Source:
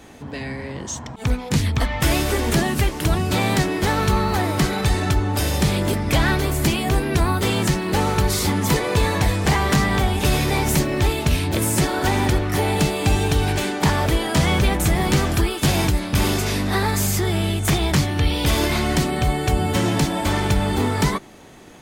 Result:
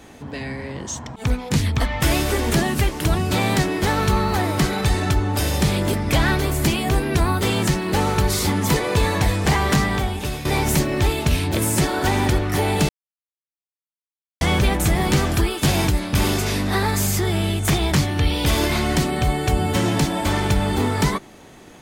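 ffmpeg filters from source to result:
ffmpeg -i in.wav -filter_complex "[0:a]asplit=4[link_01][link_02][link_03][link_04];[link_01]atrim=end=10.45,asetpts=PTS-STARTPTS,afade=type=out:start_time=9.74:duration=0.71:silence=0.237137[link_05];[link_02]atrim=start=10.45:end=12.89,asetpts=PTS-STARTPTS,afade=type=in:duration=0.004:curve=hsin:silence=0.237137,afade=type=out:start_time=2.436:duration=0.004:curve=hsin[link_06];[link_03]atrim=start=12.89:end=14.41,asetpts=PTS-STARTPTS,volume=0[link_07];[link_04]atrim=start=14.41,asetpts=PTS-STARTPTS,afade=type=in:duration=0.004:curve=hsin[link_08];[link_05][link_06][link_07][link_08]concat=n=4:v=0:a=1" out.wav

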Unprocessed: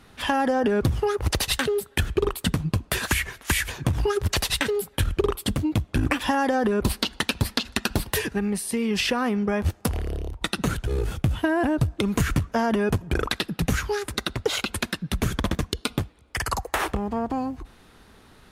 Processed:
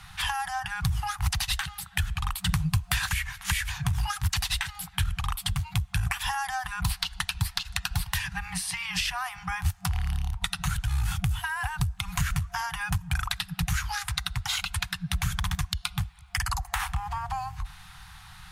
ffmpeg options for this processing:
ffmpeg -i in.wav -filter_complex "[0:a]asplit=3[link_01][link_02][link_03];[link_01]atrim=end=2.492[link_04];[link_02]atrim=start=2.488:end=3.092,asetpts=PTS-STARTPTS,volume=9dB[link_05];[link_03]atrim=start=3.088[link_06];[link_04][link_05]acrossfade=duration=0.004:curve1=hsin:curve2=hsin[link_07];[link_07][link_06]acrossfade=duration=0.004:curve1=hsin:curve2=hsin,afftfilt=real='re*(1-between(b*sr/4096,190,700))':imag='im*(1-between(b*sr/4096,190,700))':win_size=4096:overlap=0.75,equalizer=frequency=370:width=0.56:gain=-6,acrossover=split=81|6500[link_08][link_09][link_10];[link_08]acompressor=threshold=-37dB:ratio=4[link_11];[link_09]acompressor=threshold=-37dB:ratio=4[link_12];[link_10]acompressor=threshold=-46dB:ratio=4[link_13];[link_11][link_12][link_13]amix=inputs=3:normalize=0,volume=7.5dB" out.wav

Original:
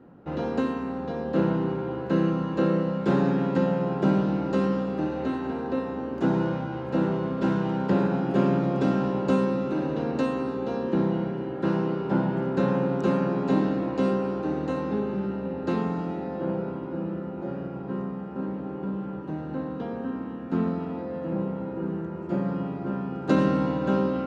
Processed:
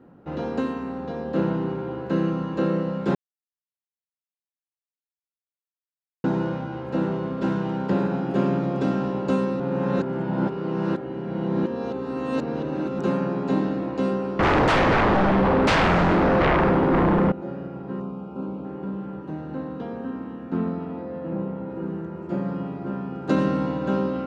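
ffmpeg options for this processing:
ffmpeg -i in.wav -filter_complex "[0:a]asettb=1/sr,asplit=3[link_01][link_02][link_03];[link_01]atrim=end=14.394[link_04];[link_02]atrim=start=14.39:end=17.32,asetpts=PTS-STARTPTS,afade=type=in:duration=0.004:curve=qsin,afade=type=out:start_time=2.926:duration=0.004:curve=qsin,aeval=exprs='0.168*sin(PI/2*5.62*val(0)/0.168)':channel_layout=same[link_05];[link_03]atrim=start=17.316[link_06];[link_04][link_05]acrossfade=duration=0.004:curve1=hsin:curve2=qsin[link_07];[link_07][link_06]acrossfade=duration=0.004:curve1=qsin:curve2=hsin,asettb=1/sr,asplit=3[link_08][link_09][link_10];[link_08]atrim=end=18.004[link_11];[link_09]atrim=start=18:end=18.65,asetpts=PTS-STARTPTS,afade=type=in:duration=0.004:curve=qsin,afade=type=out:start_time=0.646:duration=0.004:curve=qsin,asuperstop=centerf=1800:order=4:qfactor=2.2[link_12];[link_10]atrim=start=18.646[link_13];[link_11][link_12]acrossfade=duration=0.004:curve1=hsin:curve2=qsin[link_14];[link_14][link_13]acrossfade=duration=0.004:curve1=qsin:curve2=hsin,asettb=1/sr,asplit=3[link_15][link_16][link_17];[link_15]atrim=end=20.504[link_18];[link_16]atrim=start=20.5:end=21.7,asetpts=PTS-STARTPTS,afade=type=in:duration=0.004:curve=qsin,afade=type=out:start_time=1.196:duration=0.004:curve=qsin,lowpass=frequency=3200:poles=1[link_19];[link_17]atrim=start=21.696[link_20];[link_18][link_19]acrossfade=duration=0.004:curve1=hsin:curve2=qsin[link_21];[link_21][link_20]acrossfade=duration=0.004:curve1=qsin:curve2=hsin,asplit=5[link_22][link_23][link_24][link_25][link_26];[link_22]atrim=end=3.15,asetpts=PTS-STARTPTS,afade=type=out:start_time=3.146:duration=0.004:curve=hsin[link_27];[link_23]atrim=start=3.15:end=6.24,asetpts=PTS-STARTPTS,volume=0[link_28];[link_24]atrim=start=6.24:end=9.602,asetpts=PTS-STARTPTS,afade=type=in:duration=0.004:curve=hsin[link_29];[link_25]atrim=start=9.598:end=12.992,asetpts=PTS-STARTPTS,areverse[link_30];[link_26]atrim=start=12.988[link_31];[link_27][link_28][link_29]concat=n=3:v=0:a=1[link_32];[link_32][link_30]acrossfade=duration=0.004:curve1=hsin:curve2=hsin[link_33];[link_33][link_31]acrossfade=duration=0.004:curve1=hsin:curve2=hsin" out.wav

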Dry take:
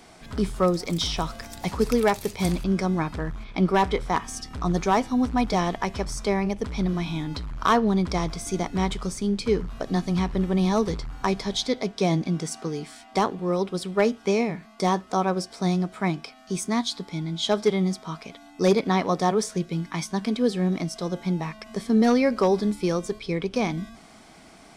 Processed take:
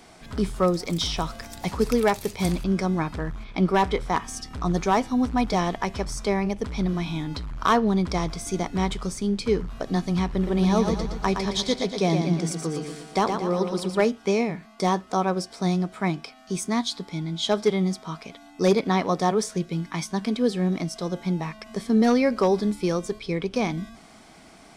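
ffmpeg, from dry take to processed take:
ffmpeg -i in.wav -filter_complex "[0:a]asettb=1/sr,asplit=3[link_01][link_02][link_03];[link_01]atrim=end=10.334[link_04];[link_02]atrim=start=10.33:end=14.05,asetpts=PTS-STARTPTS,afade=type=in:duration=0.004:curve=qsin,afade=type=out:start_time=3.716:duration=0.004:curve=qsin,aecho=1:1:117|234|351|468|585|702:0.501|0.256|0.13|0.0665|0.0339|0.0173,atrim=end_sample=164052[link_05];[link_03]atrim=start=14.046[link_06];[link_04][link_05]acrossfade=duration=0.004:curve1=hsin:curve2=qsin[link_07];[link_07][link_06]acrossfade=duration=0.004:curve1=qsin:curve2=hsin" out.wav

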